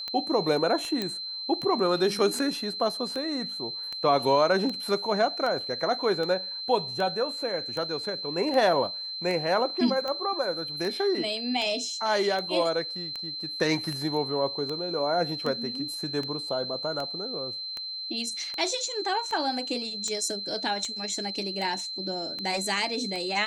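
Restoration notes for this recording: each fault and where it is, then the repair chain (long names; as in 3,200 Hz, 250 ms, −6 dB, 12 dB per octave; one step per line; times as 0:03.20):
scratch tick 78 rpm −20 dBFS
whistle 4,100 Hz −33 dBFS
0:01.02: click −15 dBFS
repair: click removal
notch filter 4,100 Hz, Q 30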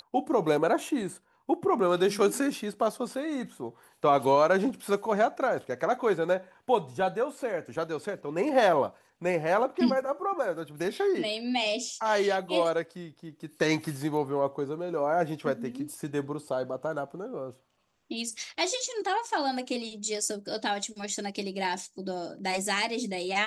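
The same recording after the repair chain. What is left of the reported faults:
none of them is left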